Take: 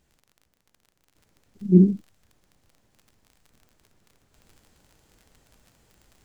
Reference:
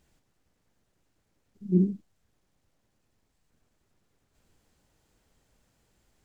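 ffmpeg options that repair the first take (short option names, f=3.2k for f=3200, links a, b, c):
-af "adeclick=t=4,asetnsamples=n=441:p=0,asendcmd='1.15 volume volume -8dB',volume=0dB"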